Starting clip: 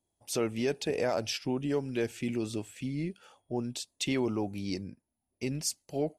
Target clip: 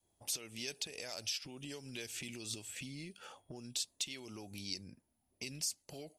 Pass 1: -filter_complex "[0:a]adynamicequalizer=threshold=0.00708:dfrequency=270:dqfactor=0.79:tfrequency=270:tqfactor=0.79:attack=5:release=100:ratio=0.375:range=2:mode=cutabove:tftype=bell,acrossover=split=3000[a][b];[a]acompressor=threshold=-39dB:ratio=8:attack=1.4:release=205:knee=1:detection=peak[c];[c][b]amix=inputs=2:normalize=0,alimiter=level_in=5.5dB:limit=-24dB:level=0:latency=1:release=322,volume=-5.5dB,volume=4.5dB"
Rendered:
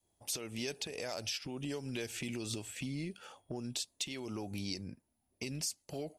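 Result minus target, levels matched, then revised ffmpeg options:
compressor: peak gain reduction -8.5 dB
-filter_complex "[0:a]adynamicequalizer=threshold=0.00708:dfrequency=270:dqfactor=0.79:tfrequency=270:tqfactor=0.79:attack=5:release=100:ratio=0.375:range=2:mode=cutabove:tftype=bell,acrossover=split=3000[a][b];[a]acompressor=threshold=-48.5dB:ratio=8:attack=1.4:release=205:knee=1:detection=peak[c];[c][b]amix=inputs=2:normalize=0,alimiter=level_in=5.5dB:limit=-24dB:level=0:latency=1:release=322,volume=-5.5dB,volume=4.5dB"

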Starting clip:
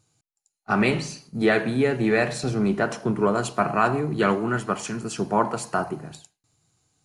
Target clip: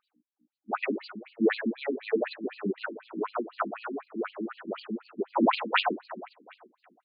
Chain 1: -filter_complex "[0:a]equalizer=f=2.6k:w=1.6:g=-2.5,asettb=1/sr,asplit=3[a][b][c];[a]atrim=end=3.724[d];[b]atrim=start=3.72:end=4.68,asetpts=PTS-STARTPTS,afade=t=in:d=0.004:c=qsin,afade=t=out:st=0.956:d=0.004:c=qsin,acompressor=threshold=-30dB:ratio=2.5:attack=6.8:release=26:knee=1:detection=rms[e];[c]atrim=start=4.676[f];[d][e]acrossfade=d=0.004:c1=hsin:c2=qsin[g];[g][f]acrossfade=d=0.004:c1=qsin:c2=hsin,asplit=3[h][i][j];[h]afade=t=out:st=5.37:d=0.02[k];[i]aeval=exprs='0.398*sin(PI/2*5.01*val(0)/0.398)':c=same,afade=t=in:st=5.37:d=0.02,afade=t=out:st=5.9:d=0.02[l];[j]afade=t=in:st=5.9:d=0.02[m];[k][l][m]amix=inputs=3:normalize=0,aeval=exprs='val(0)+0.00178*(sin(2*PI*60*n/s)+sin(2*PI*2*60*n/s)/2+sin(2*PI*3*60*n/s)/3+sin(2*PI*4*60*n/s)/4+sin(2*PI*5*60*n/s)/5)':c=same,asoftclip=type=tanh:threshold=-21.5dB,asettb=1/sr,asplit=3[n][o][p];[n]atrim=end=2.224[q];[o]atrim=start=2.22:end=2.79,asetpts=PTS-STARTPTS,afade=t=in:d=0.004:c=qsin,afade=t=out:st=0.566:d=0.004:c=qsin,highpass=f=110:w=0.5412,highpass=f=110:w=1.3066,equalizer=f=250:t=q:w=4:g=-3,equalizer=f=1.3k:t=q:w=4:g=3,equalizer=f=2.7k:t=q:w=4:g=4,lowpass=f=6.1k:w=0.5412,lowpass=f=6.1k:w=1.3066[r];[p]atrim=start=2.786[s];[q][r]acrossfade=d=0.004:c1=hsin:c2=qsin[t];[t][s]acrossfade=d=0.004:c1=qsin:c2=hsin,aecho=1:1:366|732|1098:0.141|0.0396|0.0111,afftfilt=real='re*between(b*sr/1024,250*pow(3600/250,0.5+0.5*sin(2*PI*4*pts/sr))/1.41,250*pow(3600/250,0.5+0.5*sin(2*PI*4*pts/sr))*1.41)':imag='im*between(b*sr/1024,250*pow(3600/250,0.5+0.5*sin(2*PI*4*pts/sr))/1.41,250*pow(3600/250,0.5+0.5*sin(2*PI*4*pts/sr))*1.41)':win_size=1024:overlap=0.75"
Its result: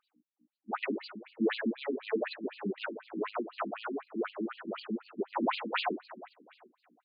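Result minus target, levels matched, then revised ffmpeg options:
soft clip: distortion +12 dB
-filter_complex "[0:a]equalizer=f=2.6k:w=1.6:g=-2.5,asettb=1/sr,asplit=3[a][b][c];[a]atrim=end=3.724[d];[b]atrim=start=3.72:end=4.68,asetpts=PTS-STARTPTS,afade=t=in:d=0.004:c=qsin,afade=t=out:st=0.956:d=0.004:c=qsin,acompressor=threshold=-30dB:ratio=2.5:attack=6.8:release=26:knee=1:detection=rms[e];[c]atrim=start=4.676[f];[d][e]acrossfade=d=0.004:c1=hsin:c2=qsin[g];[g][f]acrossfade=d=0.004:c1=qsin:c2=hsin,asplit=3[h][i][j];[h]afade=t=out:st=5.37:d=0.02[k];[i]aeval=exprs='0.398*sin(PI/2*5.01*val(0)/0.398)':c=same,afade=t=in:st=5.37:d=0.02,afade=t=out:st=5.9:d=0.02[l];[j]afade=t=in:st=5.9:d=0.02[m];[k][l][m]amix=inputs=3:normalize=0,aeval=exprs='val(0)+0.00178*(sin(2*PI*60*n/s)+sin(2*PI*2*60*n/s)/2+sin(2*PI*3*60*n/s)/3+sin(2*PI*4*60*n/s)/4+sin(2*PI*5*60*n/s)/5)':c=same,asoftclip=type=tanh:threshold=-10dB,asettb=1/sr,asplit=3[n][o][p];[n]atrim=end=2.224[q];[o]atrim=start=2.22:end=2.79,asetpts=PTS-STARTPTS,afade=t=in:d=0.004:c=qsin,afade=t=out:st=0.566:d=0.004:c=qsin,highpass=f=110:w=0.5412,highpass=f=110:w=1.3066,equalizer=f=250:t=q:w=4:g=-3,equalizer=f=1.3k:t=q:w=4:g=3,equalizer=f=2.7k:t=q:w=4:g=4,lowpass=f=6.1k:w=0.5412,lowpass=f=6.1k:w=1.3066[r];[p]atrim=start=2.786[s];[q][r]acrossfade=d=0.004:c1=hsin:c2=qsin[t];[t][s]acrossfade=d=0.004:c1=qsin:c2=hsin,aecho=1:1:366|732|1098:0.141|0.0396|0.0111,afftfilt=real='re*between(b*sr/1024,250*pow(3600/250,0.5+0.5*sin(2*PI*4*pts/sr))/1.41,250*pow(3600/250,0.5+0.5*sin(2*PI*4*pts/sr))*1.41)':imag='im*between(b*sr/1024,250*pow(3600/250,0.5+0.5*sin(2*PI*4*pts/sr))/1.41,250*pow(3600/250,0.5+0.5*sin(2*PI*4*pts/sr))*1.41)':win_size=1024:overlap=0.75"

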